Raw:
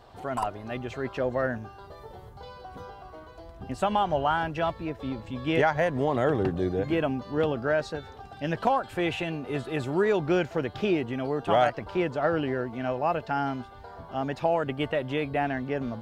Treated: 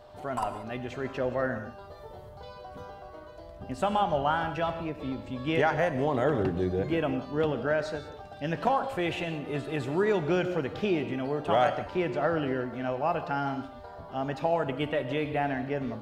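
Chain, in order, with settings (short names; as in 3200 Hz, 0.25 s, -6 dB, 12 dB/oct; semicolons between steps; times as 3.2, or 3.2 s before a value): whine 600 Hz -50 dBFS; non-linear reverb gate 0.21 s flat, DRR 9 dB; gain -2 dB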